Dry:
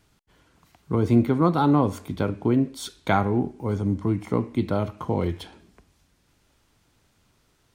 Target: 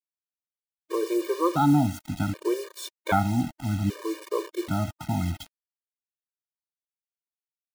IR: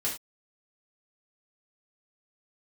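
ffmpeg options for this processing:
-af "acrusher=bits=5:mix=0:aa=0.000001,afftfilt=real='re*gt(sin(2*PI*0.64*pts/sr)*(1-2*mod(floor(b*sr/1024/310),2)),0)':imag='im*gt(sin(2*PI*0.64*pts/sr)*(1-2*mod(floor(b*sr/1024/310),2)),0)':win_size=1024:overlap=0.75"

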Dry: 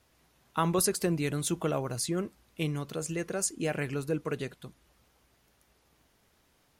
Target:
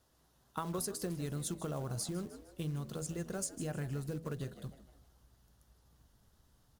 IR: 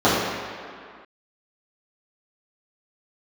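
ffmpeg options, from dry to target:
-filter_complex "[0:a]equalizer=frequency=2300:width_type=o:width=0.55:gain=-12.5,acrusher=bits=5:mode=log:mix=0:aa=0.000001,asplit=5[link_01][link_02][link_03][link_04][link_05];[link_02]adelay=153,afreqshift=74,volume=-16dB[link_06];[link_03]adelay=306,afreqshift=148,volume=-23.7dB[link_07];[link_04]adelay=459,afreqshift=222,volume=-31.5dB[link_08];[link_05]adelay=612,afreqshift=296,volume=-39.2dB[link_09];[link_01][link_06][link_07][link_08][link_09]amix=inputs=5:normalize=0,asubboost=boost=3.5:cutoff=180,acompressor=threshold=-31dB:ratio=5,bandreject=frequency=81.4:width_type=h:width=4,bandreject=frequency=162.8:width_type=h:width=4,bandreject=frequency=244.2:width_type=h:width=4,bandreject=frequency=325.6:width_type=h:width=4,bandreject=frequency=407:width_type=h:width=4,bandreject=frequency=488.4:width_type=h:width=4,bandreject=frequency=569.8:width_type=h:width=4,bandreject=frequency=651.2:width_type=h:width=4,bandreject=frequency=732.6:width_type=h:width=4,volume=-3.5dB"

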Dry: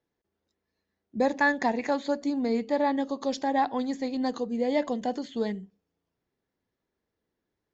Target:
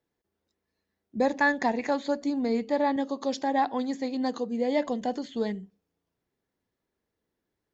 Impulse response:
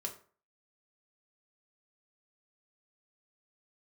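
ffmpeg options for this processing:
-filter_complex "[0:a]asettb=1/sr,asplit=3[link_01][link_02][link_03];[link_01]atrim=end=2.964[link_04];[link_02]atrim=start=2.96:end=4.86,asetpts=PTS-STARTPTS,afade=type=in:duration=0.004:curve=qsin,afade=type=out:start_time=1.896:duration=0.004:curve=qsin,highpass=120[link_05];[link_03]atrim=start=4.856[link_06];[link_04][link_05]acrossfade=duration=0.004:curve1=hsin:curve2=qsin[link_07];[link_07][link_06]acrossfade=duration=0.004:curve1=qsin:curve2=hsin"

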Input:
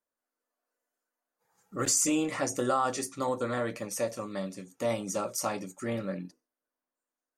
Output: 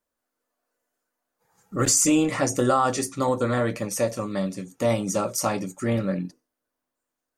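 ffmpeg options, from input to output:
ffmpeg -i in.wav -af "lowshelf=frequency=160:gain=9.5,volume=6dB" out.wav

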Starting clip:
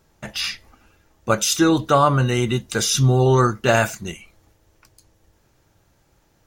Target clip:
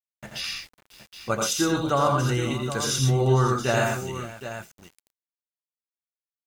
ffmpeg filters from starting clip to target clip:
ffmpeg -i in.wav -af "aecho=1:1:84|116|129|544|769:0.596|0.473|0.299|0.141|0.282,aeval=exprs='val(0)*gte(abs(val(0)),0.0106)':channel_layout=same,volume=-7.5dB" out.wav

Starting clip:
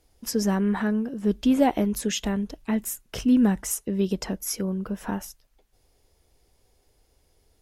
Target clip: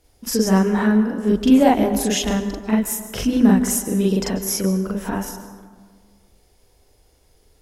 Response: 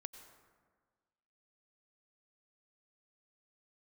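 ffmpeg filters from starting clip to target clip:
-filter_complex "[0:a]asplit=2[link_01][link_02];[1:a]atrim=start_sample=2205,asetrate=41454,aresample=44100,adelay=42[link_03];[link_02][link_03]afir=irnorm=-1:irlink=0,volume=6dB[link_04];[link_01][link_04]amix=inputs=2:normalize=0,volume=3dB"

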